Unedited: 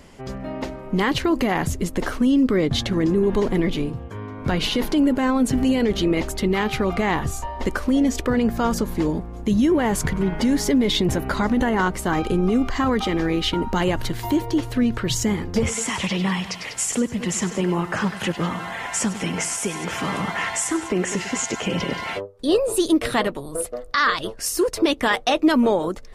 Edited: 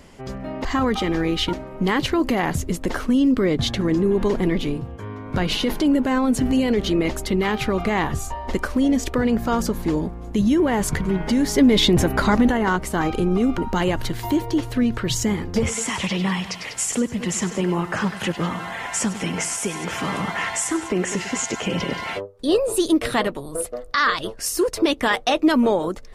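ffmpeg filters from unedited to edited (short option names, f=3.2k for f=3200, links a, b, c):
-filter_complex "[0:a]asplit=6[a][b][c][d][e][f];[a]atrim=end=0.652[g];[b]atrim=start=12.698:end=13.582[h];[c]atrim=start=0.648:end=10.702[i];[d]atrim=start=10.698:end=11.612,asetpts=PTS-STARTPTS,volume=4dB[j];[e]atrim=start=11.608:end=12.702[k];[f]atrim=start=13.578[l];[g][h]acrossfade=d=0.004:c1=hsin:c2=hsin[m];[m][i]acrossfade=d=0.004:c1=hsin:c2=hsin[n];[n][j]acrossfade=d=0.004:c1=hsin:c2=hsin[o];[o][k]acrossfade=d=0.004:c1=hsin:c2=hsin[p];[p][l]acrossfade=d=0.004:c1=hsin:c2=hsin"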